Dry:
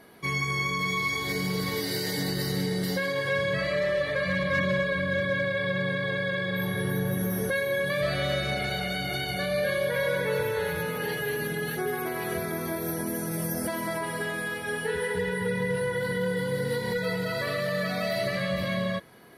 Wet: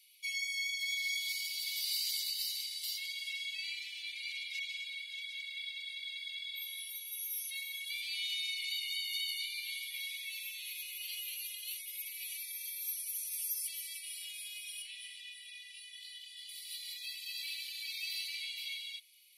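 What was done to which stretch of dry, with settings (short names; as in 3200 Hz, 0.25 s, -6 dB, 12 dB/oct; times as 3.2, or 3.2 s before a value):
14.82–16.49 air absorption 51 m
whole clip: steep high-pass 2300 Hz 96 dB/oct; gain -1 dB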